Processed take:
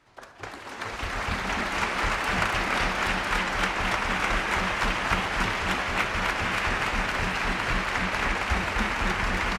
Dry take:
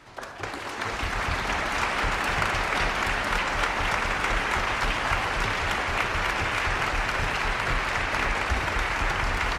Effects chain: on a send: frequency-shifting echo 283 ms, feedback 36%, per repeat +150 Hz, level -5 dB; on the sum: upward expansion 1.5:1, over -44 dBFS

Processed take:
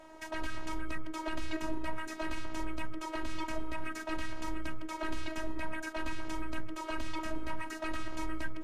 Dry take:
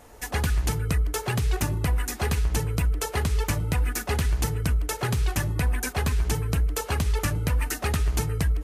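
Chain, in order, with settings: frequency weighting A; peak limiter -27 dBFS, peak gain reduction 11.5 dB; robot voice 318 Hz; RIAA curve playback; trim +2 dB

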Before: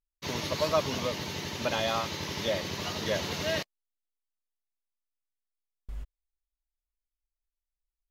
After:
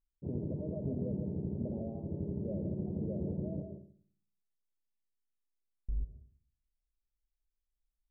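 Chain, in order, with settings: peak limiter -24.5 dBFS, peak gain reduction 11 dB; Gaussian low-pass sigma 21 samples; reverberation RT60 0.50 s, pre-delay 119 ms, DRR 8.5 dB; trim +4 dB

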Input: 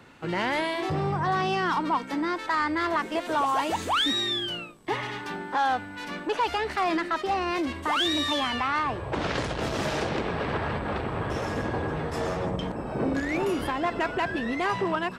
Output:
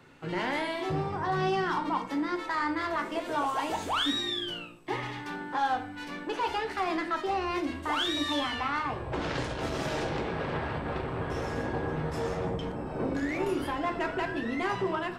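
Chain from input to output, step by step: simulated room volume 44 m³, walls mixed, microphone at 0.38 m; trim -5.5 dB

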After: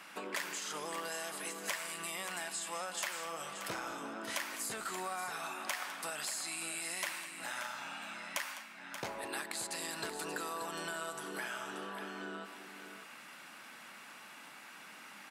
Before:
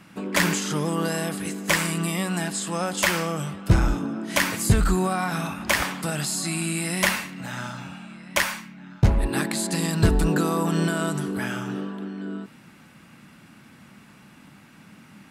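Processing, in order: high-pass 630 Hz 12 dB/octave; compression 4:1, threshold -42 dBFS, peak gain reduction 20.5 dB; on a send: multi-tap echo 205/581 ms -15/-9.5 dB; on the sum: trim +2 dB

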